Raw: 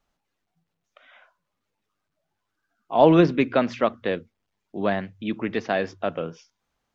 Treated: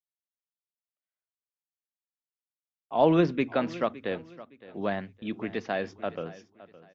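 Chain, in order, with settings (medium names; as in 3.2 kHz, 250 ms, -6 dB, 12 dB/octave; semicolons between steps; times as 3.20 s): gate -44 dBFS, range -44 dB; on a send: feedback delay 564 ms, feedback 29%, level -18 dB; on the sum: trim -6 dB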